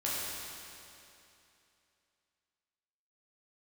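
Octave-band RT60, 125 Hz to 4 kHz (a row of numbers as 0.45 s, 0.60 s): 2.8 s, 2.8 s, 2.8 s, 2.8 s, 2.8 s, 2.7 s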